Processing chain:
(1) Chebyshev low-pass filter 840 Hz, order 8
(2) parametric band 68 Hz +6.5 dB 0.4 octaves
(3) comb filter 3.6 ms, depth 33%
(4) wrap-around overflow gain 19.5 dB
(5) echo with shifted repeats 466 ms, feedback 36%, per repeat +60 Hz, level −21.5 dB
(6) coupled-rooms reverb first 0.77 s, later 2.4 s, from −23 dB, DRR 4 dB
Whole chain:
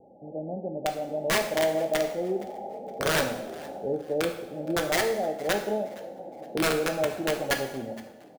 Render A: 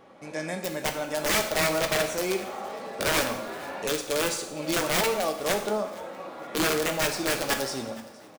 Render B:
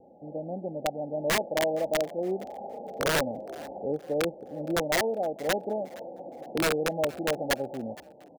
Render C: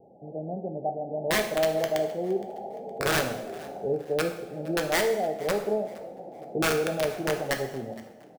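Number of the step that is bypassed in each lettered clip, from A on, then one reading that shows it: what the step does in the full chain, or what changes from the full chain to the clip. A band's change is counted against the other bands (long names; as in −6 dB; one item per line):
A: 1, 8 kHz band +5.0 dB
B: 6, change in crest factor −5.5 dB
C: 3, 125 Hz band +2.5 dB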